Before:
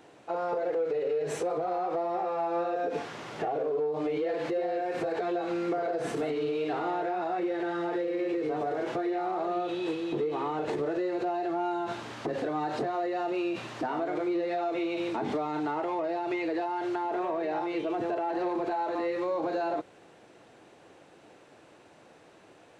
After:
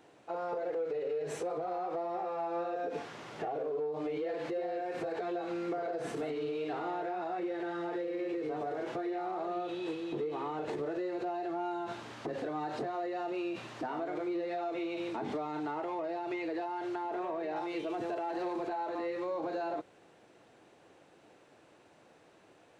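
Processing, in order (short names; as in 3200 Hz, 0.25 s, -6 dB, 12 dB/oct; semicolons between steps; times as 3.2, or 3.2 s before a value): 17.56–18.67 high shelf 4000 Hz +8.5 dB; gain -5.5 dB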